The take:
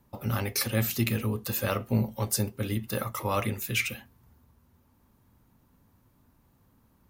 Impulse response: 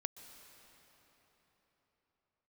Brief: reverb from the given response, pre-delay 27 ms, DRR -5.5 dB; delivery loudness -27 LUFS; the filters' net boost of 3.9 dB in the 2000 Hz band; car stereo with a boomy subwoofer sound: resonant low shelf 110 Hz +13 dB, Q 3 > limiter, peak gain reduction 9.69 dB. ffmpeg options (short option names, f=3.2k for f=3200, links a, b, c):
-filter_complex "[0:a]equalizer=f=2k:t=o:g=5,asplit=2[a][b];[1:a]atrim=start_sample=2205,adelay=27[c];[b][c]afir=irnorm=-1:irlink=0,volume=7.5dB[d];[a][d]amix=inputs=2:normalize=0,lowshelf=f=110:t=q:w=3:g=13,volume=-4.5dB,alimiter=limit=-17.5dB:level=0:latency=1"